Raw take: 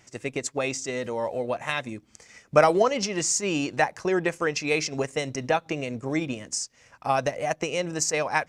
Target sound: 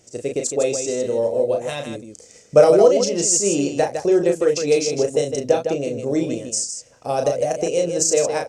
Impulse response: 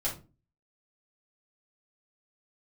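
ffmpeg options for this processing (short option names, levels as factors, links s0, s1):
-af "equalizer=f=500:t=o:w=1:g=11,equalizer=f=1000:t=o:w=1:g=-9,equalizer=f=2000:t=o:w=1:g=-9,equalizer=f=8000:t=o:w=1:g=7,aecho=1:1:34.99|157.4:0.562|0.447,volume=1.12"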